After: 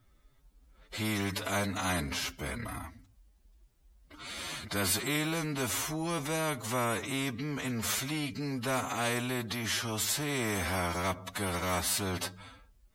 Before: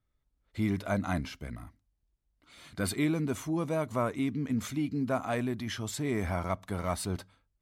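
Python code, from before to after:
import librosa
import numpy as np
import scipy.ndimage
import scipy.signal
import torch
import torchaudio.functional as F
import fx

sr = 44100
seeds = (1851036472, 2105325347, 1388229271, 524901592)

y = fx.stretch_vocoder(x, sr, factor=1.7)
y = fx.spectral_comp(y, sr, ratio=2.0)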